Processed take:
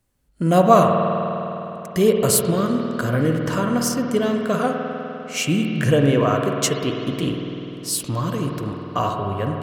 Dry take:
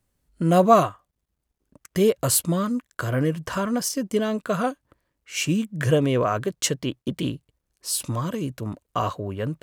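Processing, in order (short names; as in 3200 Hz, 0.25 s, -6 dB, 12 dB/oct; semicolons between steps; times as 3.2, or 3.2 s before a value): spring tank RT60 3.4 s, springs 50 ms, chirp 75 ms, DRR 2 dB; gain +2 dB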